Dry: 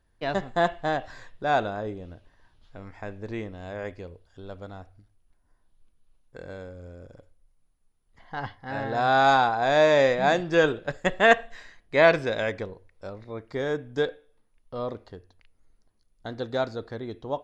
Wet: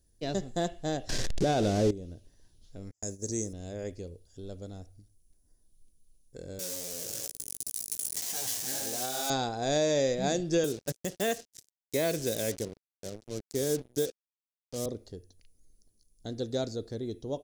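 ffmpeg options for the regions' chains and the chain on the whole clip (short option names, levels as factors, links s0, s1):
-filter_complex "[0:a]asettb=1/sr,asplit=3[s0][s1][s2];[s0]atrim=end=1.094[s3];[s1]atrim=start=1.09:end=1.91,asetpts=PTS-STARTPTS,afade=t=in:d=0.004:c=qsin,afade=t=out:st=0.816:d=0.004:c=qsin,aeval=exprs='val(0)+0.5*0.0335*sgn(val(0))':c=same,lowpass=3900,acontrast=83[s4];[s2]atrim=start=1.906[s5];[s3][s4]acrossfade=d=0.004:c1=hsin:c2=qsin[s6];[s6][s5]acrossfade=d=0.004:c1=qsin:c2=hsin,asettb=1/sr,asplit=3[s7][s8][s9];[s7]atrim=end=2.914[s10];[s8]atrim=start=2.91:end=3.53,asetpts=PTS-STARTPTS,afade=t=in:d=0.004:c=qsin,afade=t=out:st=0.616:d=0.004:c=qsin,highpass=43,agate=range=0.01:threshold=0.00708:ratio=16:release=100:detection=peak,highshelf=f=4500:t=q:w=3:g=14[s11];[s9]atrim=start=3.526[s12];[s10][s11]acrossfade=d=0.004:c1=hsin:c2=qsin[s13];[s13][s12]acrossfade=d=0.004:c1=qsin:c2=hsin,asettb=1/sr,asplit=3[s14][s15][s16];[s14]atrim=end=6.594[s17];[s15]atrim=start=6.59:end=9.3,asetpts=PTS-STARTPTS,afade=t=in:d=0.004:c=qsin,afade=t=out:st=2.706:d=0.004:c=qsin,aeval=exprs='val(0)+0.5*0.0631*sgn(val(0))':c=same,highpass=f=1000:p=1,flanger=delay=15.5:depth=3.1:speed=2.8[s18];[s16]atrim=start=9.296[s19];[s17][s18]acrossfade=d=0.004:c1=hsin:c2=qsin[s20];[s20][s19]acrossfade=d=0.004:c1=qsin:c2=hsin,asettb=1/sr,asplit=3[s21][s22][s23];[s21]atrim=end=10.644[s24];[s22]atrim=start=10.64:end=14.86,asetpts=PTS-STARTPTS,afade=t=in:d=0.004:c=qsin,afade=t=out:st=4.216:d=0.004:c=qsin,highpass=f=97:w=0.5412,highpass=f=97:w=1.3066,acrusher=bits=5:mix=0:aa=0.5[s25];[s23]atrim=start=14.856[s26];[s24][s25]acrossfade=d=0.004:c1=hsin:c2=qsin[s27];[s27][s26]acrossfade=d=0.004:c1=qsin:c2=hsin,firequalizer=gain_entry='entry(400,0);entry(980,-17);entry(5900,11)':delay=0.05:min_phase=1,alimiter=limit=0.126:level=0:latency=1:release=233"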